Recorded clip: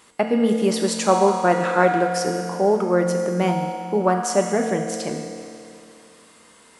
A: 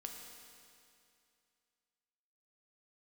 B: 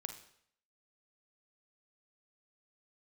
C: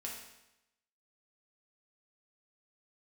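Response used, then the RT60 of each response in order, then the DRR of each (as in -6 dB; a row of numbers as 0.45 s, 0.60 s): A; 2.5 s, 0.65 s, 0.90 s; 1.5 dB, 6.5 dB, -3.5 dB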